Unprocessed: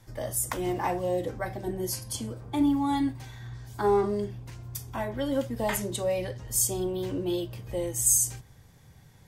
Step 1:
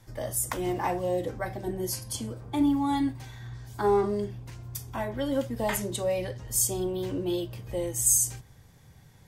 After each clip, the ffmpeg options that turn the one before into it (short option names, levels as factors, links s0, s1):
-af anull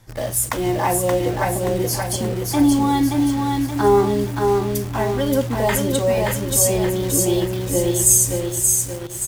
-filter_complex "[0:a]aecho=1:1:576|1152|1728|2304|2880|3456:0.668|0.307|0.141|0.0651|0.0299|0.0138,asplit=2[s0][s1];[s1]acrusher=bits=5:mix=0:aa=0.000001,volume=0.562[s2];[s0][s2]amix=inputs=2:normalize=0,volume=1.68"